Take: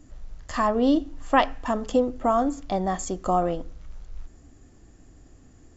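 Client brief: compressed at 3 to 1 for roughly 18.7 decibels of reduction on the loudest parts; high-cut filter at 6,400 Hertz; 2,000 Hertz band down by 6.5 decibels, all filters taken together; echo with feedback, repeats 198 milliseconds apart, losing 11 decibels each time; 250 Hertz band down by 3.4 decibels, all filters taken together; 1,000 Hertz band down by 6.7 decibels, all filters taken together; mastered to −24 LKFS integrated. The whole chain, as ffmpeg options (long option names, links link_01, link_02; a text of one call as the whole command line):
ffmpeg -i in.wav -af "lowpass=6400,equalizer=frequency=250:width_type=o:gain=-3.5,equalizer=frequency=1000:width_type=o:gain=-8.5,equalizer=frequency=2000:width_type=o:gain=-5,acompressor=threshold=-46dB:ratio=3,aecho=1:1:198|396|594:0.282|0.0789|0.0221,volume=22.5dB" out.wav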